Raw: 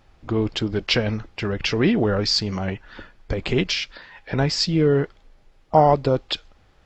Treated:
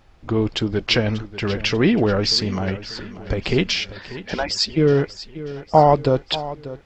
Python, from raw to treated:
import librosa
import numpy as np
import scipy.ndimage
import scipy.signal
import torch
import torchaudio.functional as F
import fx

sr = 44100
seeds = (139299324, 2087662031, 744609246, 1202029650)

y = fx.hpss_only(x, sr, part='percussive', at=(4.32, 4.76), fade=0.02)
y = fx.echo_feedback(y, sr, ms=589, feedback_pct=46, wet_db=-15)
y = y * 10.0 ** (2.0 / 20.0)